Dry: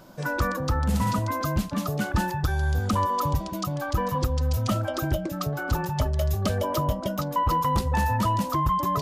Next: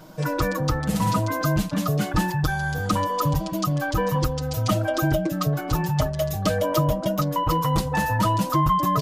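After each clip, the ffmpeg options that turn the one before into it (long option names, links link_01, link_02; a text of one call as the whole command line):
ffmpeg -i in.wav -af "aecho=1:1:6.4:0.86,volume=1.5dB" out.wav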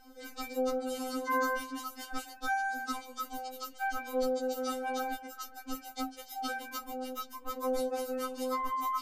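ffmpeg -i in.wav -af "afftfilt=real='re*3.46*eq(mod(b,12),0)':imag='im*3.46*eq(mod(b,12),0)':win_size=2048:overlap=0.75,volume=-7.5dB" out.wav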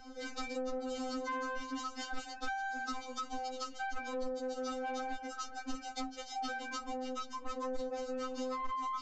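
ffmpeg -i in.wav -filter_complex "[0:a]acrossover=split=130[link_01][link_02];[link_02]acompressor=threshold=-40dB:ratio=5[link_03];[link_01][link_03]amix=inputs=2:normalize=0,aresample=16000,asoftclip=type=tanh:threshold=-35.5dB,aresample=44100,volume=5dB" out.wav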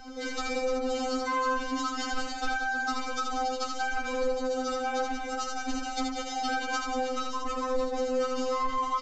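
ffmpeg -i in.wav -af "aecho=1:1:80|184|319.2|495|723.4:0.631|0.398|0.251|0.158|0.1,volume=7dB" out.wav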